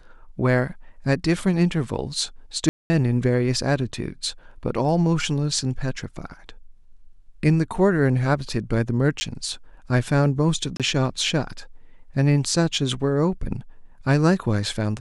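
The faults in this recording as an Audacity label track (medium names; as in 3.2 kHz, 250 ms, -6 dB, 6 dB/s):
2.690000	2.900000	dropout 210 ms
9.200000	9.210000	dropout 10 ms
10.770000	10.800000	dropout 27 ms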